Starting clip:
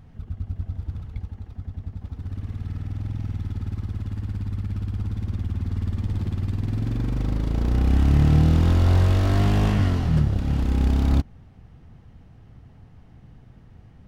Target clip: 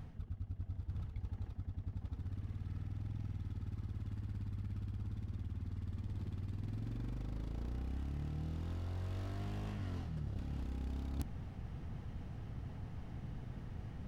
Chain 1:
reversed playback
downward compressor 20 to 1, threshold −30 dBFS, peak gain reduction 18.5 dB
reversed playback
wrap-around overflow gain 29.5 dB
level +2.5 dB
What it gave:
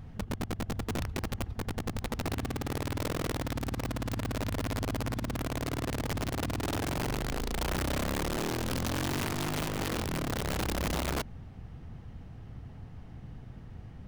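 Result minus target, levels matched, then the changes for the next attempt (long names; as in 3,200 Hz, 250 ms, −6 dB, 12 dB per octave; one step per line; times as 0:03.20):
downward compressor: peak gain reduction −9.5 dB
change: downward compressor 20 to 1, threshold −40 dBFS, peak gain reduction 28 dB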